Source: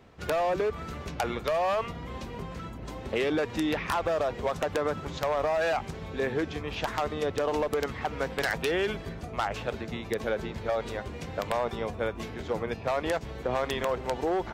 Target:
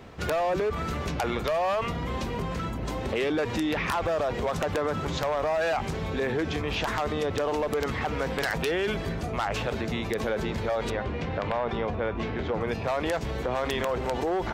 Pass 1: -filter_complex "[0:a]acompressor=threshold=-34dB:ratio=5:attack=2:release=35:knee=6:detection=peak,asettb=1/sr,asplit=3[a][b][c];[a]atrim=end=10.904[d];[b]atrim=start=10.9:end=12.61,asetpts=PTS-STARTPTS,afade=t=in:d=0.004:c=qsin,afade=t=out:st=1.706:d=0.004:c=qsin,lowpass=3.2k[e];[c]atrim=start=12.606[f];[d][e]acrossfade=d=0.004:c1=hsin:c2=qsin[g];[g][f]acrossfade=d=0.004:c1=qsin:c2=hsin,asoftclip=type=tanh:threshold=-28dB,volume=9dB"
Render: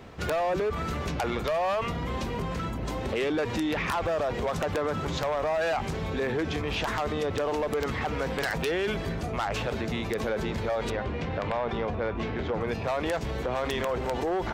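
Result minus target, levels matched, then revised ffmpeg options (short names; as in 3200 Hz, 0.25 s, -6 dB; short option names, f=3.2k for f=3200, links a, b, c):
soft clip: distortion +18 dB
-filter_complex "[0:a]acompressor=threshold=-34dB:ratio=5:attack=2:release=35:knee=6:detection=peak,asettb=1/sr,asplit=3[a][b][c];[a]atrim=end=10.904[d];[b]atrim=start=10.9:end=12.61,asetpts=PTS-STARTPTS,afade=t=in:d=0.004:c=qsin,afade=t=out:st=1.706:d=0.004:c=qsin,lowpass=3.2k[e];[c]atrim=start=12.606[f];[d][e]acrossfade=d=0.004:c1=hsin:c2=qsin[g];[g][f]acrossfade=d=0.004:c1=qsin:c2=hsin,asoftclip=type=tanh:threshold=-18dB,volume=9dB"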